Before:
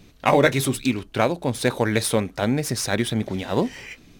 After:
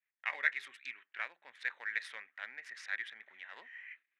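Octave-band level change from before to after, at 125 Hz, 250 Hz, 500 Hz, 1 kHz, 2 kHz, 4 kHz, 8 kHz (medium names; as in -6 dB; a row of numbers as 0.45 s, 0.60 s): under -40 dB, under -40 dB, -37.5 dB, -24.5 dB, -8.0 dB, -21.0 dB, -32.0 dB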